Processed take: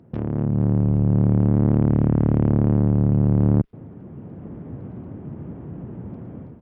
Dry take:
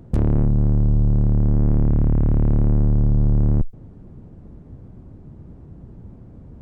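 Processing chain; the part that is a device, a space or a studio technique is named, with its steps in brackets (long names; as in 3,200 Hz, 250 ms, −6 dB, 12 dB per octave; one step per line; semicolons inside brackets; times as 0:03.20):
Bluetooth headset (high-pass filter 130 Hz 12 dB per octave; automatic gain control gain up to 14.5 dB; downsampling to 8,000 Hz; level −4.5 dB; SBC 64 kbit/s 44,100 Hz)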